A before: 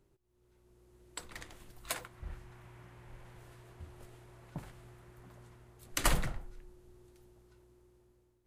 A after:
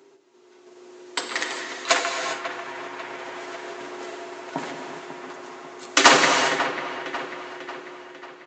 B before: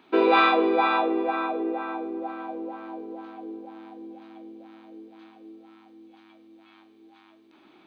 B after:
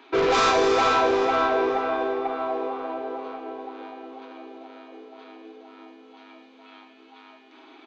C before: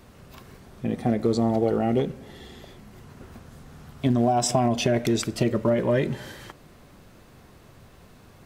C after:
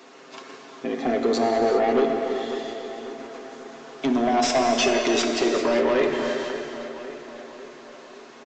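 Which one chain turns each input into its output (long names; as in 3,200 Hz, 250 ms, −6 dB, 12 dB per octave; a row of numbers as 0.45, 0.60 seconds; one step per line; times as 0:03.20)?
stylus tracing distortion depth 0.12 ms
high-pass filter 300 Hz 24 dB per octave
notch filter 560 Hz, Q 12
comb filter 7.4 ms, depth 49%
in parallel at −1.5 dB: output level in coarse steps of 10 dB
on the sum: soft clipping −20 dBFS
on a send: delay with a low-pass on its return 544 ms, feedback 52%, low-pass 2,800 Hz, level −11 dB
on the sum: reverb whose tail is shaped and stops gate 430 ms flat, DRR 3 dB
downsampling to 16,000 Hz
loudness normalisation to −23 LKFS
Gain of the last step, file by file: +17.0, +1.5, +3.0 decibels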